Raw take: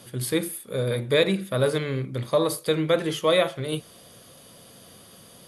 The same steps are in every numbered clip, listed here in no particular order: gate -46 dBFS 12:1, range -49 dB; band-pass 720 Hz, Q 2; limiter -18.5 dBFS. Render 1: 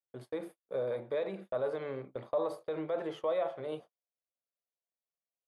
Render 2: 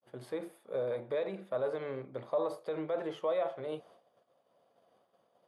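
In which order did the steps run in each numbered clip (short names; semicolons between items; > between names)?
limiter > band-pass > gate; gate > limiter > band-pass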